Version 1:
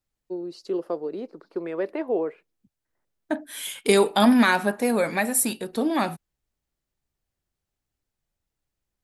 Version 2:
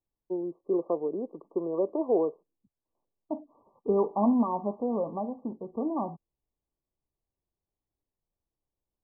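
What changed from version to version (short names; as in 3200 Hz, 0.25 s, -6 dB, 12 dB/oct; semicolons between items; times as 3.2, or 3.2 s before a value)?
second voice -6.5 dB; master: add brick-wall FIR low-pass 1200 Hz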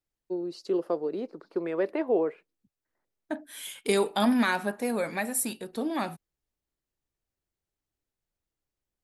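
master: remove brick-wall FIR low-pass 1200 Hz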